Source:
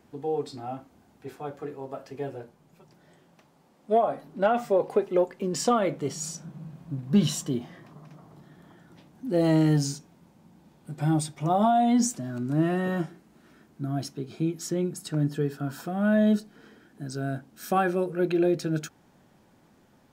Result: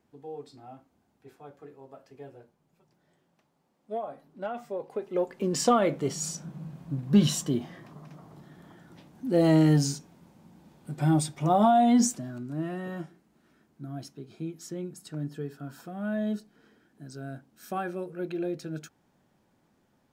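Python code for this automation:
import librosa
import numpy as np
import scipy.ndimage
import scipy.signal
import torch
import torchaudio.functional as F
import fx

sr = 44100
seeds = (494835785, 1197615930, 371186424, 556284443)

y = fx.gain(x, sr, db=fx.line((4.9, -11.5), (5.43, 1.0), (12.04, 1.0), (12.5, -8.5)))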